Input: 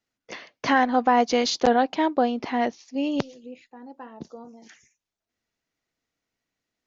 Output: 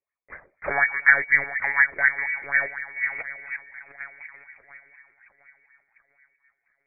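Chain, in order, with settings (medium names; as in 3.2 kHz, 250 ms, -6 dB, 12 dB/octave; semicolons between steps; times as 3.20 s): bass shelf 330 Hz -4.5 dB; in parallel at -3.5 dB: bit crusher 6-bit; on the sum: distance through air 240 m; echo whose repeats swap between lows and highs 350 ms, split 850 Hz, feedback 67%, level -9.5 dB; on a send at -21 dB: reverberation RT60 1.2 s, pre-delay 5 ms; on the sum: frequency inversion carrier 2.5 kHz; monotone LPC vocoder at 8 kHz 140 Hz; sweeping bell 4.1 Hz 360–1900 Hz +16 dB; trim -11 dB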